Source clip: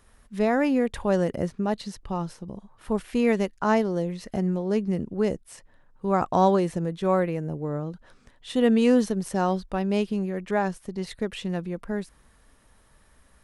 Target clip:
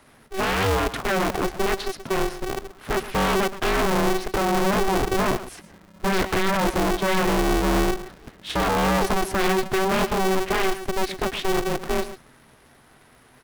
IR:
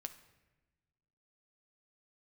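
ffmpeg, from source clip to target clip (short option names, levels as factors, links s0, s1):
-filter_complex "[0:a]highpass=f=120:p=1,equalizer=f=7700:t=o:w=0.87:g=-9,acrossover=split=220|3500[s0][s1][s2];[s0]dynaudnorm=f=470:g=13:m=3.98[s3];[s3][s1][s2]amix=inputs=3:normalize=0,alimiter=limit=0.211:level=0:latency=1,aeval=exprs='0.211*sin(PI/2*2.82*val(0)/0.211)':c=same,asplit=2[s4][s5];[s5]adelay=122.4,volume=0.224,highshelf=f=4000:g=-2.76[s6];[s4][s6]amix=inputs=2:normalize=0,aeval=exprs='val(0)*sgn(sin(2*PI*190*n/s))':c=same,volume=0.596"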